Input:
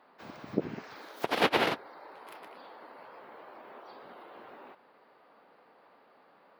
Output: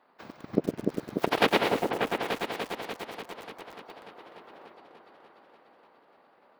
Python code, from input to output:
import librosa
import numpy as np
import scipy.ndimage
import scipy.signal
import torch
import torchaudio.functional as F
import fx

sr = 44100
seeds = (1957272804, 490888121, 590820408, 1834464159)

y = fx.transient(x, sr, attack_db=9, sustain_db=-5)
y = fx.echo_opening(y, sr, ms=294, hz=750, octaves=2, feedback_pct=70, wet_db=-3)
y = fx.echo_crushed(y, sr, ms=107, feedback_pct=35, bits=6, wet_db=-4.5)
y = y * librosa.db_to_amplitude(-4.0)